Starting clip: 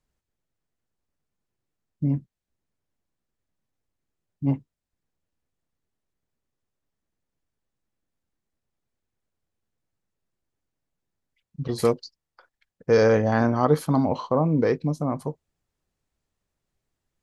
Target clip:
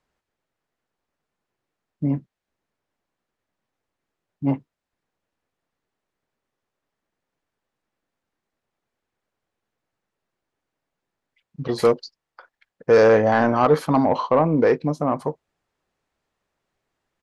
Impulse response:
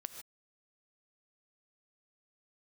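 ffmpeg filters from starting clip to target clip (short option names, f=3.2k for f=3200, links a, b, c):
-filter_complex "[0:a]asplit=2[a][b];[b]highpass=f=720:p=1,volume=17dB,asoftclip=type=tanh:threshold=-4dB[c];[a][c]amix=inputs=2:normalize=0,lowpass=f=1.7k:p=1,volume=-6dB,aresample=32000,aresample=44100"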